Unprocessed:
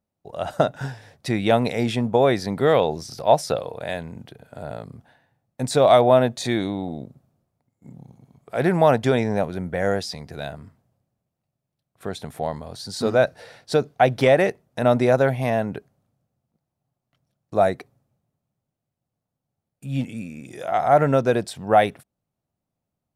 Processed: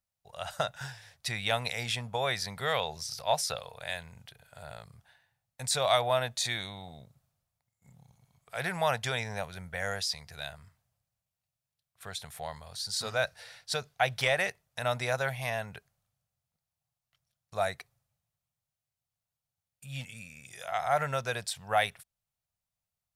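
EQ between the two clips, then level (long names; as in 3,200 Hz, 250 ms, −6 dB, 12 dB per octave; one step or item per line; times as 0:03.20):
guitar amp tone stack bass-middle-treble 10-0-10
+1.5 dB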